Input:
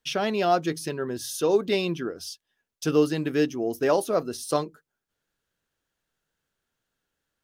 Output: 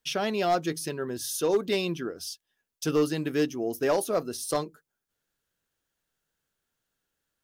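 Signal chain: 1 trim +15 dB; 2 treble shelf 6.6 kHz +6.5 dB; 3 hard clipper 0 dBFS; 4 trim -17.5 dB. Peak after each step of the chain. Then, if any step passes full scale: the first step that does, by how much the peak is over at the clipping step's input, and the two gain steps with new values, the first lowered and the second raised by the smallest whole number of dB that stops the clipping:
+5.5 dBFS, +6.0 dBFS, 0.0 dBFS, -17.5 dBFS; step 1, 6.0 dB; step 1 +9 dB, step 4 -11.5 dB

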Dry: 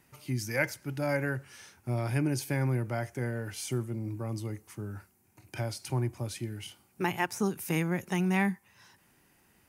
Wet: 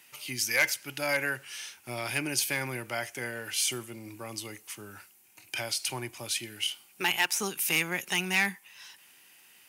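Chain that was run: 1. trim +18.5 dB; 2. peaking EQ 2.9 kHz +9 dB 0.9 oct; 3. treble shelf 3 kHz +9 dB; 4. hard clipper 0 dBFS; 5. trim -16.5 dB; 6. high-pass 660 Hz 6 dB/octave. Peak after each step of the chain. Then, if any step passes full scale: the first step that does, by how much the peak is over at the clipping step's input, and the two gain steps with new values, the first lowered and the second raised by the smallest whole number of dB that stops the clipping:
+5.5 dBFS, +7.5 dBFS, +9.5 dBFS, 0.0 dBFS, -16.5 dBFS, -13.0 dBFS; step 1, 9.5 dB; step 1 +8.5 dB, step 5 -6.5 dB

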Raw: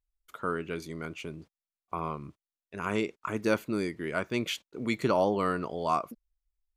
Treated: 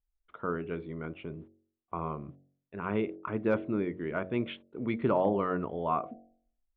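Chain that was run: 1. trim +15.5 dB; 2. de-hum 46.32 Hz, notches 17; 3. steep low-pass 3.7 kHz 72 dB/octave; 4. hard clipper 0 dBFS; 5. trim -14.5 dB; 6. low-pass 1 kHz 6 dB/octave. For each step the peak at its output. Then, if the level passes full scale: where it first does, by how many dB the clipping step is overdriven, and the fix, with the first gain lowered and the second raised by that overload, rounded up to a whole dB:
+3.5 dBFS, +2.5 dBFS, +3.0 dBFS, 0.0 dBFS, -14.5 dBFS, -15.0 dBFS; step 1, 3.0 dB; step 1 +12.5 dB, step 5 -11.5 dB

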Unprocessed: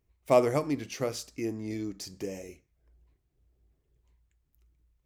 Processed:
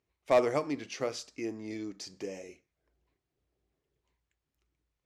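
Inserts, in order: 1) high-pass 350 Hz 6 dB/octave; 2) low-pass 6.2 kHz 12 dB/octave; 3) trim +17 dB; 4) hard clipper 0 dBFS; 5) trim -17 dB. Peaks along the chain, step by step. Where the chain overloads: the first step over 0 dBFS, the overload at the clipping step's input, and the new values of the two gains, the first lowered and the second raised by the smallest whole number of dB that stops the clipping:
-12.0 dBFS, -12.0 dBFS, +5.0 dBFS, 0.0 dBFS, -17.0 dBFS; step 3, 5.0 dB; step 3 +12 dB, step 5 -12 dB

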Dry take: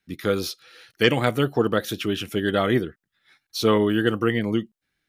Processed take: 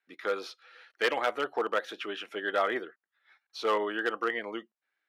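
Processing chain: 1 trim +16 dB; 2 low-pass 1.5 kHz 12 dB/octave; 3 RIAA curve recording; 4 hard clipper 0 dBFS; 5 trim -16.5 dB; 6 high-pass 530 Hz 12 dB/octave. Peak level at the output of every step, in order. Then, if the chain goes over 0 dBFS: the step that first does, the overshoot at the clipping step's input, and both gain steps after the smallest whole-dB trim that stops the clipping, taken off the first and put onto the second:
+10.5 dBFS, +9.0 dBFS, +8.0 dBFS, 0.0 dBFS, -16.5 dBFS, -12.5 dBFS; step 1, 8.0 dB; step 1 +8 dB, step 5 -8.5 dB

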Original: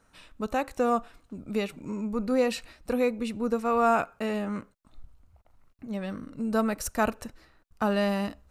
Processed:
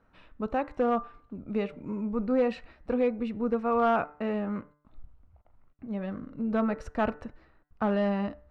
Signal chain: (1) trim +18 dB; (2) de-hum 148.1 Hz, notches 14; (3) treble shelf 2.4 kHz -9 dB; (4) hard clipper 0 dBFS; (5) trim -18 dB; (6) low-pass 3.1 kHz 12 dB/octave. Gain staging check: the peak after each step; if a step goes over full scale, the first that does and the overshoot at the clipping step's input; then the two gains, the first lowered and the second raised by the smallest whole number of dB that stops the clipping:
+6.5 dBFS, +6.5 dBFS, +5.0 dBFS, 0.0 dBFS, -18.0 dBFS, -17.5 dBFS; step 1, 5.0 dB; step 1 +13 dB, step 5 -13 dB

